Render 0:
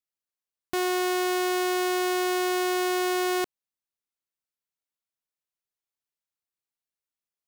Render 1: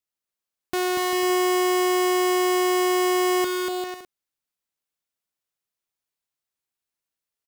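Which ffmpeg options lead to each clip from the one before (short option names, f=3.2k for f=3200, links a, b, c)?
-af "aecho=1:1:240|396|497.4|563.3|606.2:0.631|0.398|0.251|0.158|0.1,volume=2dB"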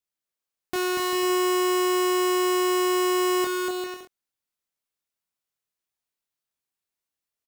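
-filter_complex "[0:a]asplit=2[a][b];[b]adelay=24,volume=-5.5dB[c];[a][c]amix=inputs=2:normalize=0,volume=-2dB"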